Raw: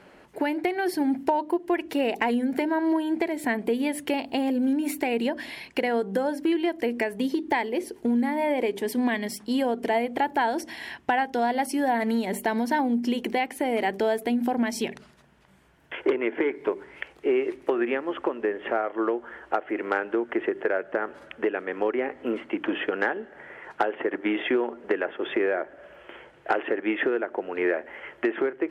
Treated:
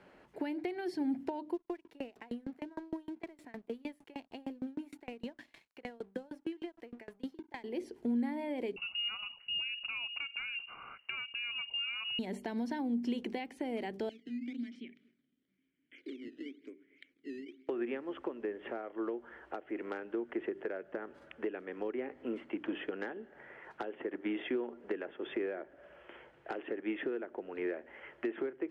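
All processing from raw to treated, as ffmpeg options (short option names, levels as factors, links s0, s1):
-filter_complex "[0:a]asettb=1/sr,asplit=3[s0][s1][s2];[s0]atrim=end=1.544[s3];[s1]atrim=start=1.54:end=7.64,asetpts=PTS-STARTPTS,afade=t=in:d=0.004:c=qsin,afade=t=out:st=6.096:d=0.004:c=qsin,aeval=exprs='sgn(val(0))*max(abs(val(0))-0.00631,0)':c=same,aeval=exprs='val(0)*pow(10,-30*if(lt(mod(6.5*n/s,1),2*abs(6.5)/1000),1-mod(6.5*n/s,1)/(2*abs(6.5)/1000),(mod(6.5*n/s,1)-2*abs(6.5)/1000)/(1-2*abs(6.5)/1000))/20)':c=same[s4];[s2]atrim=start=7.636[s5];[s3][s4]acrossfade=d=0.004:c1=hsin:c2=qsin[s6];[s6][s5]acrossfade=d=0.004:c1=qsin:c2=hsin,asettb=1/sr,asplit=3[s7][s8][s9];[s7]atrim=end=8.764[s10];[s8]atrim=start=8.76:end=12.19,asetpts=PTS-STARTPTS,afade=t=in:d=0.004:c=qsin,afade=t=out:st=3.426:d=0.004:c=qsin,lowshelf=f=190:t=q:w=3:g=-10.5,acompressor=threshold=0.0631:ratio=2:attack=3.2:release=140:knee=1:detection=peak,lowpass=f=2600:t=q:w=0.5098,lowpass=f=2600:t=q:w=0.6013,lowpass=f=2600:t=q:w=0.9,lowpass=f=2600:t=q:w=2.563,afreqshift=-3100[s11];[s9]atrim=start=12.186[s12];[s10][s11]acrossfade=d=0.004:c1=hsin:c2=qsin[s13];[s13][s12]acrossfade=d=0.004:c1=qsin:c2=hsin,asettb=1/sr,asplit=3[s14][s15][s16];[s14]atrim=end=14.094[s17];[s15]atrim=start=14.09:end=17.69,asetpts=PTS-STARTPTS,afade=t=in:d=0.004:c=qsin,afade=t=out:st=3.596:d=0.004:c=qsin,aecho=1:1:235:0.0708,atrim=end_sample=158760,acrusher=samples=11:mix=1:aa=0.000001:lfo=1:lforange=17.6:lforate=1,asplit=3[s18][s19][s20];[s18]bandpass=f=270:t=q:w=8,volume=1[s21];[s19]bandpass=f=2290:t=q:w=8,volume=0.501[s22];[s20]bandpass=f=3010:t=q:w=8,volume=0.355[s23];[s21][s22][s23]amix=inputs=3:normalize=0[s24];[s16]atrim=start=17.686[s25];[s17][s24]acrossfade=d=0.004:c1=hsin:c2=qsin[s26];[s26][s25]acrossfade=d=0.004:c1=qsin:c2=hsin,acrossover=split=8200[s27][s28];[s28]acompressor=threshold=0.00126:ratio=4:attack=1:release=60[s29];[s27][s29]amix=inputs=2:normalize=0,highshelf=f=6400:g=-9.5,acrossover=split=410|3000[s30][s31][s32];[s31]acompressor=threshold=0.00794:ratio=2[s33];[s30][s33][s32]amix=inputs=3:normalize=0,volume=0.398"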